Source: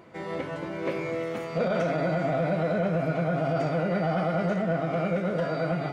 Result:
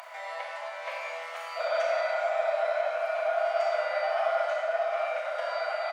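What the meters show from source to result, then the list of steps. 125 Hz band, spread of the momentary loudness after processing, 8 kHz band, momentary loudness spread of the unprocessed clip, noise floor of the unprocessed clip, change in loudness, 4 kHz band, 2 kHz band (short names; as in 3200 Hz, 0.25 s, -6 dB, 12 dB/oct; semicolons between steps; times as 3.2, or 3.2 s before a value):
under -40 dB, 9 LU, n/a, 6 LU, -36 dBFS, -2.0 dB, +3.0 dB, +1.5 dB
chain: Chebyshev high-pass 600 Hz, order 6; upward compressor, threshold -37 dBFS; on a send: echo 0.107 s -23 dB; on the sum: Schroeder reverb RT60 1.2 s, combs from 28 ms, DRR 1 dB; Opus 128 kbps 48000 Hz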